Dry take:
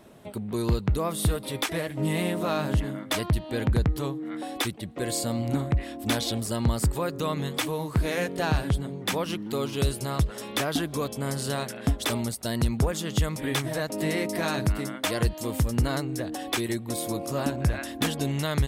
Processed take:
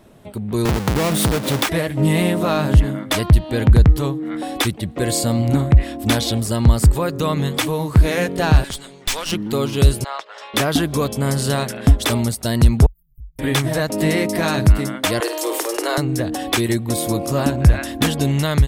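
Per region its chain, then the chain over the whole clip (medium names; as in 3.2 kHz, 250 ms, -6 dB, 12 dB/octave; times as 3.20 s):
0.65–1.69 s: square wave that keeps the level + high-pass 110 Hz + compression 5:1, threshold -23 dBFS
8.64–9.32 s: frequency weighting ITU-R 468 + valve stage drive 26 dB, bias 0.8
10.04–10.54 s: high-pass 670 Hz 24 dB/octave + distance through air 170 m
12.86–13.39 s: inverse Chebyshev band-stop 270–6300 Hz, stop band 80 dB + compression 4:1, threshold -50 dBFS
15.20–15.98 s: steep high-pass 310 Hz 96 dB/octave + flutter echo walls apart 9 m, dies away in 0.31 s + level flattener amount 50%
whole clip: bass shelf 97 Hz +10 dB; level rider gain up to 7 dB; trim +1.5 dB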